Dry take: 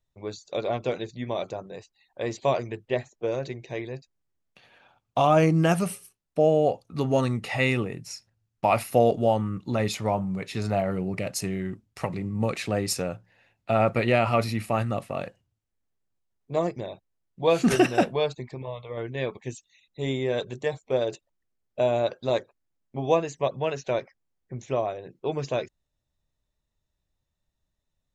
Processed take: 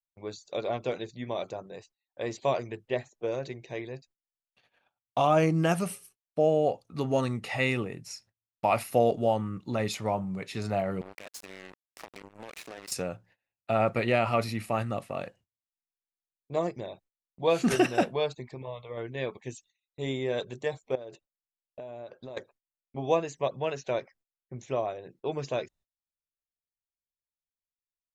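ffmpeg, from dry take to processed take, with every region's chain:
ffmpeg -i in.wav -filter_complex "[0:a]asettb=1/sr,asplit=3[link_01][link_02][link_03];[link_01]atrim=end=11.014[link_04];[link_02]atrim=start=11.01:end=12.92,asetpts=PTS-STARTPTS,afade=type=in:duration=0.004:curve=qsin,afade=type=out:start_time=1.906:duration=0.004:curve=qsin,highpass=410,acompressor=threshold=-36dB:ratio=8:attack=3.2:release=140:knee=1:detection=peak,acrusher=bits=5:mix=0:aa=0.5[link_05];[link_03]atrim=start=12.916[link_06];[link_04][link_05]acrossfade=duration=0.004:curve1=hsin:curve2=qsin[link_07];[link_07][link_06]acrossfade=duration=0.004:curve1=qsin:curve2=hsin,asettb=1/sr,asplit=3[link_08][link_09][link_10];[link_08]atrim=end=20.954[link_11];[link_09]atrim=start=20.95:end=22.37,asetpts=PTS-STARTPTS,afade=type=in:duration=0.004:curve=qsin,afade=type=out:start_time=1.416:duration=0.004:curve=qsin,acompressor=threshold=-34dB:ratio=12:attack=3.2:release=140:knee=1:detection=peak,highshelf=frequency=3800:gain=-11.5[link_12];[link_10]atrim=start=22.366[link_13];[link_11][link_12]acrossfade=duration=0.004:curve1=hsin:curve2=qsin[link_14];[link_14][link_13]acrossfade=duration=0.004:curve1=qsin:curve2=hsin,lowshelf=frequency=170:gain=-3.5,agate=range=-23dB:threshold=-55dB:ratio=16:detection=peak,volume=-3dB" out.wav

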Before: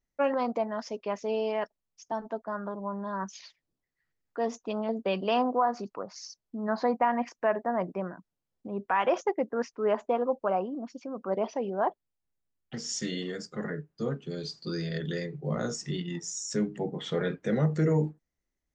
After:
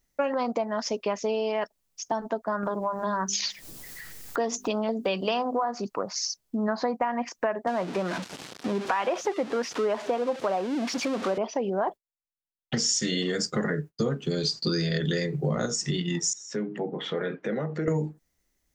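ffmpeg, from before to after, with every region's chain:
ffmpeg -i in.wav -filter_complex "[0:a]asettb=1/sr,asplit=3[link_01][link_02][link_03];[link_01]atrim=end=2.634[link_04];[link_02]atrim=start=2.63:end=5.64,asetpts=PTS-STARTPTS,afade=type=in:duration=0.004:curve=qsin,afade=type=out:start_time=3.006:duration=0.004:curve=qsin,highshelf=frequency=5100:gain=6,bandreject=frequency=50:width_type=h:width=6,bandreject=frequency=100:width_type=h:width=6,bandreject=frequency=150:width_type=h:width=6,bandreject=frequency=200:width_type=h:width=6,bandreject=frequency=250:width_type=h:width=6,bandreject=frequency=300:width_type=h:width=6,bandreject=frequency=350:width_type=h:width=6,bandreject=frequency=400:width_type=h:width=6,acompressor=mode=upward:threshold=-31dB:ratio=2.5:attack=3.2:release=140:knee=2.83:detection=peak[link_05];[link_03]atrim=start=5.636[link_06];[link_04][link_05]acrossfade=duration=0.004:curve1=hsin:curve2=qsin[link_07];[link_07][link_06]acrossfade=duration=0.004:curve1=qsin:curve2=hsin,asettb=1/sr,asplit=3[link_08][link_09][link_10];[link_08]atrim=end=7.674[link_11];[link_09]atrim=start=7.67:end=11.38,asetpts=PTS-STARTPTS,afade=type=in:duration=0.004:curve=qsin,afade=type=out:start_time=3.706:duration=0.004:curve=qsin,aeval=exprs='val(0)+0.5*0.0168*sgn(val(0))':channel_layout=same,highpass=180,lowpass=4700[link_12];[link_10]atrim=start=11.376[link_13];[link_11][link_12]acrossfade=duration=0.004:curve1=hsin:curve2=qsin[link_14];[link_14][link_13]acrossfade=duration=0.004:curve1=qsin:curve2=hsin,asettb=1/sr,asplit=3[link_15][link_16][link_17];[link_15]atrim=end=11.884[link_18];[link_16]atrim=start=11.88:end=15.66,asetpts=PTS-STARTPTS,afade=type=in:duration=0.004:curve=qsin,afade=type=out:start_time=3.776:duration=0.004:curve=qsin,acontrast=23,agate=range=-33dB:threshold=-48dB:ratio=3:release=100:detection=peak[link_19];[link_17]atrim=start=15.656[link_20];[link_18][link_19]acrossfade=duration=0.004:curve1=hsin:curve2=qsin[link_21];[link_21][link_20]acrossfade=duration=0.004:curve1=qsin:curve2=hsin,asettb=1/sr,asplit=3[link_22][link_23][link_24];[link_22]atrim=end=16.334[link_25];[link_23]atrim=start=16.33:end=17.88,asetpts=PTS-STARTPTS,afade=type=in:duration=0.004:curve=qsin,afade=type=out:start_time=1.546:duration=0.004:curve=qsin,acompressor=threshold=-38dB:ratio=2:attack=3.2:release=140:knee=1:detection=peak,highpass=220,lowpass=2500[link_26];[link_24]atrim=start=17.876[link_27];[link_25][link_26]acrossfade=duration=0.004:curve1=hsin:curve2=qsin[link_28];[link_28][link_27]acrossfade=duration=0.004:curve1=qsin:curve2=hsin,highshelf=frequency=4000:gain=8,acompressor=threshold=-33dB:ratio=6,volume=9dB" out.wav

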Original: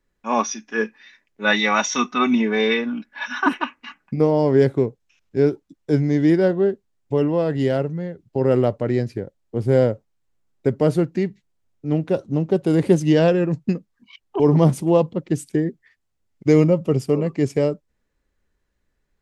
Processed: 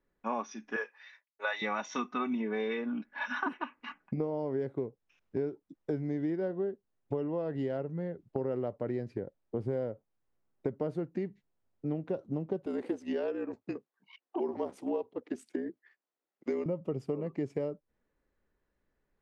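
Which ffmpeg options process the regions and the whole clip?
ffmpeg -i in.wav -filter_complex "[0:a]asettb=1/sr,asplit=3[link_01][link_02][link_03];[link_01]atrim=end=0.764[link_04];[link_02]atrim=start=0.76:end=1.62,asetpts=PTS-STARTPTS,afade=type=in:duration=0.004:curve=qsin,afade=type=out:start_time=0.856:duration=0.004:curve=qsin,highpass=frequency=570:width=0.5412,highpass=frequency=570:width=1.3066,highshelf=frequency=8100:gain=11,agate=range=-33dB:threshold=-57dB:ratio=3:release=100:detection=peak[link_05];[link_03]atrim=start=1.616[link_06];[link_04][link_05]acrossfade=duration=0.004:curve1=hsin:curve2=qsin[link_07];[link_07][link_06]acrossfade=duration=0.004:curve1=qsin:curve2=hsin,asettb=1/sr,asplit=3[link_08][link_09][link_10];[link_08]atrim=end=12.664[link_11];[link_09]atrim=start=12.66:end=16.66,asetpts=PTS-STARTPTS,afade=type=in:duration=0.004:curve=qsin,afade=type=out:start_time=3.996:duration=0.004:curve=qsin,highpass=frequency=350:width=0.5412,highpass=frequency=350:width=1.3066,afreqshift=-52,tremolo=f=64:d=0.4[link_12];[link_10]atrim=start=16.656[link_13];[link_11][link_12]acrossfade=duration=0.004:curve1=hsin:curve2=qsin[link_14];[link_14][link_13]acrossfade=duration=0.004:curve1=qsin:curve2=hsin,lowpass=frequency=1100:poles=1,lowshelf=frequency=180:gain=-9.5,acompressor=threshold=-31dB:ratio=6" out.wav

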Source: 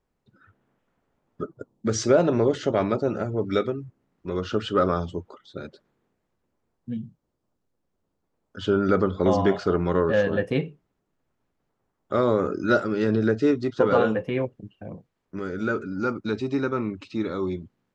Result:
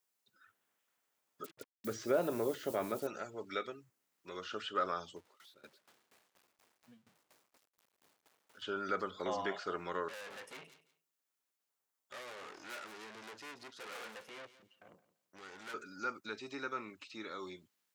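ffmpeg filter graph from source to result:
ffmpeg -i in.wav -filter_complex "[0:a]asettb=1/sr,asplit=3[link_01][link_02][link_03];[link_01]atrim=end=1.444[link_04];[link_02]atrim=start=1.44:end=3.07,asetpts=PTS-STARTPTS,afade=type=in:duration=0.004:curve=qsin,afade=type=out:start_time=1.626:duration=0.004:curve=qsin,tiltshelf=frequency=860:gain=7.5,acrusher=bits=7:mix=0:aa=0.5[link_05];[link_03]atrim=start=3.066[link_06];[link_04][link_05]acrossfade=duration=0.004:curve1=hsin:curve2=qsin[link_07];[link_07][link_06]acrossfade=duration=0.004:curve1=qsin:curve2=hsin,asettb=1/sr,asplit=3[link_08][link_09][link_10];[link_08]atrim=end=5.164[link_11];[link_09]atrim=start=5.16:end=8.62,asetpts=PTS-STARTPTS,afade=type=in:duration=0.004:curve=qsin,afade=type=out:start_time=3.456:duration=0.004:curve=qsin,aeval=exprs='val(0)+0.5*0.00668*sgn(val(0))':channel_layout=same,lowpass=frequency=1300:poles=1,aeval=exprs='val(0)*pow(10,-19*if(lt(mod(4.2*n/s,1),2*abs(4.2)/1000),1-mod(4.2*n/s,1)/(2*abs(4.2)/1000),(mod(4.2*n/s,1)-2*abs(4.2)/1000)/(1-2*abs(4.2)/1000))/20)':channel_layout=same[link_12];[link_10]atrim=start=8.616[link_13];[link_11][link_12]acrossfade=duration=0.004:curve1=hsin:curve2=qsin[link_14];[link_14][link_13]acrossfade=duration=0.004:curve1=qsin:curve2=hsin,asettb=1/sr,asplit=3[link_15][link_16][link_17];[link_15]atrim=end=10.084[link_18];[link_16]atrim=start=10.08:end=15.74,asetpts=PTS-STARTPTS,afade=type=in:duration=0.004:curve=qsin,afade=type=out:start_time=5.656:duration=0.004:curve=qsin,aeval=exprs='(tanh(44.7*val(0)+0.7)-tanh(0.7))/44.7':channel_layout=same,aecho=1:1:170|340:0.141|0.0268,atrim=end_sample=249606[link_19];[link_17]atrim=start=15.736[link_20];[link_18][link_19]acrossfade=duration=0.004:curve1=hsin:curve2=qsin[link_21];[link_21][link_20]acrossfade=duration=0.004:curve1=qsin:curve2=hsin,acrossover=split=2600[link_22][link_23];[link_23]acompressor=threshold=-56dB:ratio=4:attack=1:release=60[link_24];[link_22][link_24]amix=inputs=2:normalize=0,aderivative,volume=6.5dB" out.wav

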